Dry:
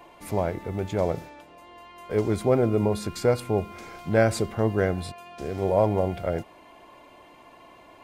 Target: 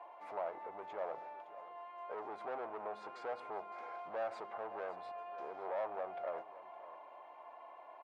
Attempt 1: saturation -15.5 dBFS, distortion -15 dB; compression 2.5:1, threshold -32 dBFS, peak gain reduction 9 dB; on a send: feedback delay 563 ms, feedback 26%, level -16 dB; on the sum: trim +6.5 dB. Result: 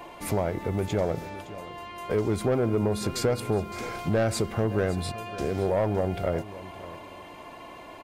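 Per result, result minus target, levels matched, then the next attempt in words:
1 kHz band -9.5 dB; saturation: distortion -9 dB
saturation -15.5 dBFS, distortion -15 dB; compression 2.5:1, threshold -32 dBFS, peak gain reduction 9 dB; ladder band-pass 900 Hz, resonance 45%; on a send: feedback delay 563 ms, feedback 26%, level -16 dB; on the sum: trim +6.5 dB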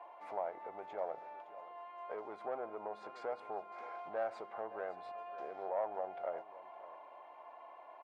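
saturation: distortion -9 dB
saturation -26 dBFS, distortion -6 dB; compression 2.5:1, threshold -32 dBFS, peak gain reduction 3.5 dB; ladder band-pass 900 Hz, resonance 45%; on a send: feedback delay 563 ms, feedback 26%, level -16 dB; on the sum: trim +6.5 dB

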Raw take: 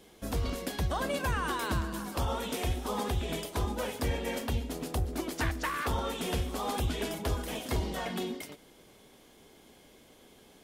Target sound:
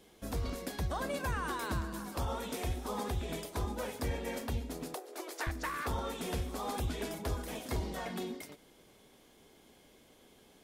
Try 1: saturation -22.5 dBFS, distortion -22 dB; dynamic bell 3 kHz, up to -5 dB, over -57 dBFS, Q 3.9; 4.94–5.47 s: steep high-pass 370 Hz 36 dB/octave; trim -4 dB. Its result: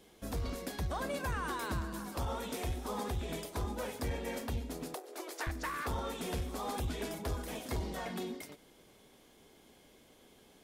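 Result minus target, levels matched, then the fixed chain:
saturation: distortion +20 dB
saturation -11.5 dBFS, distortion -42 dB; dynamic bell 3 kHz, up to -5 dB, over -57 dBFS, Q 3.9; 4.94–5.47 s: steep high-pass 370 Hz 36 dB/octave; trim -4 dB

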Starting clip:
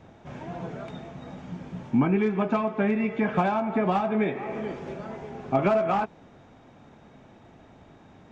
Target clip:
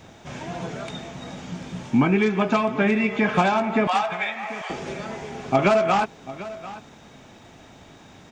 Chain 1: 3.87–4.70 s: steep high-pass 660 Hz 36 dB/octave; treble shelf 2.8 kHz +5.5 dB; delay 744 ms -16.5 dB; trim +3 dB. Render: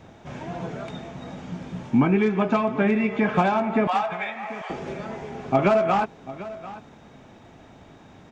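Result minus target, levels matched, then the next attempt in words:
4 kHz band -5.5 dB
3.87–4.70 s: steep high-pass 660 Hz 36 dB/octave; treble shelf 2.8 kHz +16.5 dB; delay 744 ms -16.5 dB; trim +3 dB

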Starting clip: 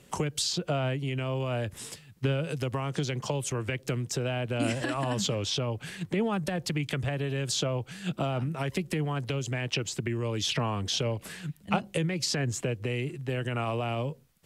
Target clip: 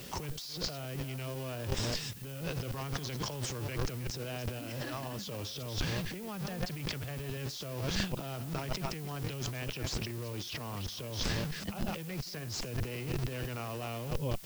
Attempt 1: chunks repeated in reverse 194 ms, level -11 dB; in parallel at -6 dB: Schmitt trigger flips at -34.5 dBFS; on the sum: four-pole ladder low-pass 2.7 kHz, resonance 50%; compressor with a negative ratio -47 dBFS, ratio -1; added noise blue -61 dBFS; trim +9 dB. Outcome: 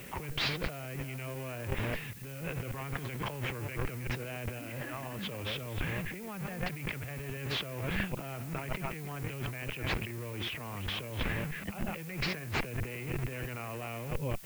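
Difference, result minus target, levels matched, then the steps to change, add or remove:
8 kHz band -6.5 dB
change: four-pole ladder low-pass 6.2 kHz, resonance 50%

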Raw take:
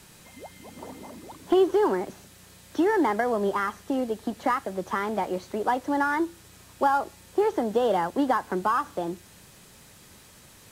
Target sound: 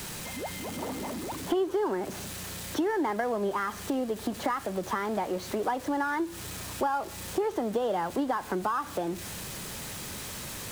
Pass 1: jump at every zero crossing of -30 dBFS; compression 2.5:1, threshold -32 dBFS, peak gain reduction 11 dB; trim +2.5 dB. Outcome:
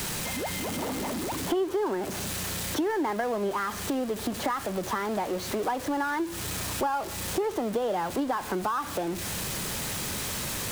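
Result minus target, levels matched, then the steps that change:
jump at every zero crossing: distortion +7 dB
change: jump at every zero crossing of -38 dBFS

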